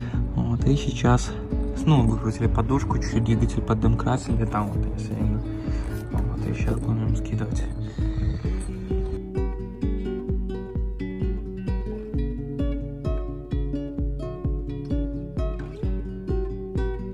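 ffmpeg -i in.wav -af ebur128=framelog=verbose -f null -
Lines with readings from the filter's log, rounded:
Integrated loudness:
  I:         -26.5 LUFS
  Threshold: -36.5 LUFS
Loudness range:
  LRA:         6.8 LU
  Threshold: -46.7 LUFS
  LRA low:   -29.8 LUFS
  LRA high:  -23.0 LUFS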